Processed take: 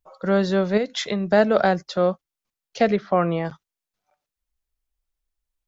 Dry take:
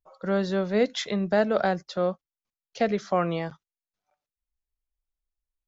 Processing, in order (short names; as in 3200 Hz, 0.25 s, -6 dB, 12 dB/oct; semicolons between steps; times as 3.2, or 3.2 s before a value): 0.77–1.3 compressor 10:1, threshold -26 dBFS, peak gain reduction 9.5 dB; 2.96–3.45 air absorption 330 m; gain +5.5 dB